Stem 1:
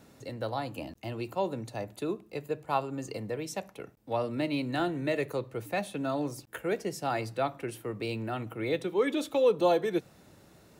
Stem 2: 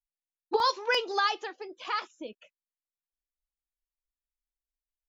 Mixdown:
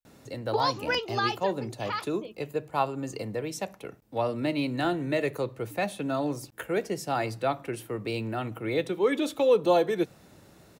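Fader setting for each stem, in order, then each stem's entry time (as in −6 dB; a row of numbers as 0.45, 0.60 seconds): +2.5, −1.5 decibels; 0.05, 0.00 seconds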